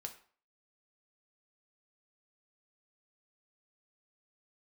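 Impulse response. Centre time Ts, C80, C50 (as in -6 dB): 10 ms, 16.0 dB, 12.0 dB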